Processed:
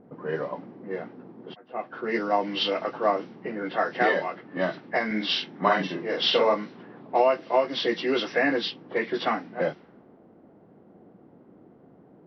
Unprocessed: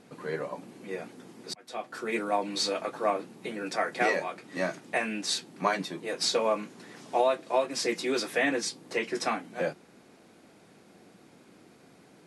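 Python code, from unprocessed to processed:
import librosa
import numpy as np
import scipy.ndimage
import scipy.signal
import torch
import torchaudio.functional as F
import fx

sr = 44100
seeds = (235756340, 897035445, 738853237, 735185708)

y = fx.freq_compress(x, sr, knee_hz=1500.0, ratio=1.5)
y = fx.doubler(y, sr, ms=47.0, db=-3, at=(5.06, 6.54))
y = fx.env_lowpass(y, sr, base_hz=700.0, full_db=-24.5)
y = y * librosa.db_to_amplitude(4.0)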